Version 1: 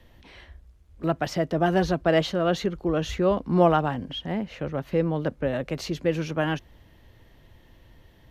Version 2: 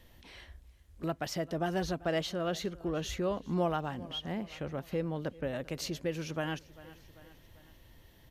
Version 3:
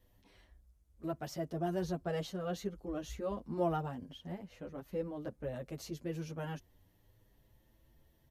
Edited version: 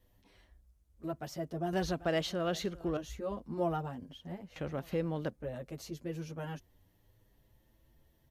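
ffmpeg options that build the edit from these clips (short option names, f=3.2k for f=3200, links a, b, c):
-filter_complex "[1:a]asplit=2[a][b];[2:a]asplit=3[c][d][e];[c]atrim=end=1.732[f];[a]atrim=start=1.728:end=2.972[g];[d]atrim=start=2.968:end=4.562[h];[b]atrim=start=4.558:end=5.302[i];[e]atrim=start=5.298[j];[f][g]acrossfade=d=0.004:c1=hsin:c2=hsin[k];[k][h]acrossfade=d=0.004:c1=hsin:c2=hsin[l];[l][i]acrossfade=d=0.004:c1=hsin:c2=hsin[m];[m][j]acrossfade=d=0.004:c1=hsin:c2=hsin"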